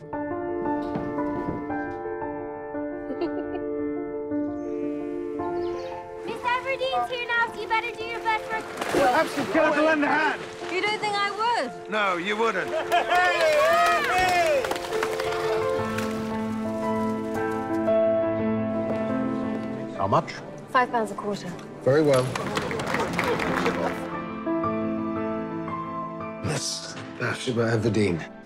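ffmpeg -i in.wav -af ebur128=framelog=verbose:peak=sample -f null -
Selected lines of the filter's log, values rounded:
Integrated loudness:
  I:         -25.6 LUFS
  Threshold: -35.7 LUFS
Loudness range:
  LRA:         8.0 LU
  Threshold: -45.5 LUFS
  LRA low:   -30.2 LUFS
  LRA high:  -22.2 LUFS
Sample peak:
  Peak:       -9.2 dBFS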